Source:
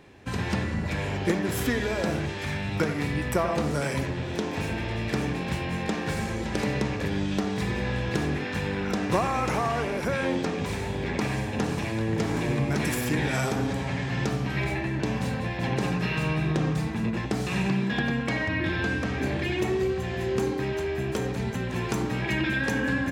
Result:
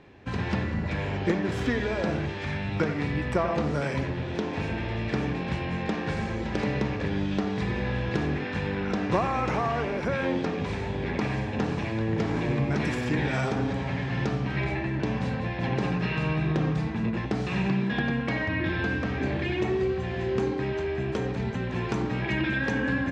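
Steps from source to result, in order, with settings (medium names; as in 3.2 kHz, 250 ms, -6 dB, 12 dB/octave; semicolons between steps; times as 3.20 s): distance through air 130 m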